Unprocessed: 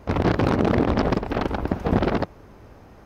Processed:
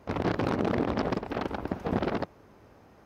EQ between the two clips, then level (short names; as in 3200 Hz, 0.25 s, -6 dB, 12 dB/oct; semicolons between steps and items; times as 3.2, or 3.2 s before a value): HPF 130 Hz 6 dB/oct; -6.5 dB